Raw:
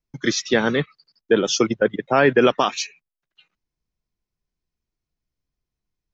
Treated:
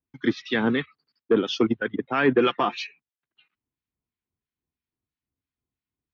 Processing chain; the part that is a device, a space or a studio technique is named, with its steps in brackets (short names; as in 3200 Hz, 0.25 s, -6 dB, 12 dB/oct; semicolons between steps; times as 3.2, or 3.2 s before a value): guitar amplifier with harmonic tremolo (harmonic tremolo 3 Hz, depth 70%, crossover 1200 Hz; soft clip -9.5 dBFS, distortion -19 dB; speaker cabinet 81–3700 Hz, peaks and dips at 84 Hz +4 dB, 170 Hz -4 dB, 260 Hz +6 dB, 580 Hz -7 dB); 2.34–2.77 comb 5.8 ms, depth 52%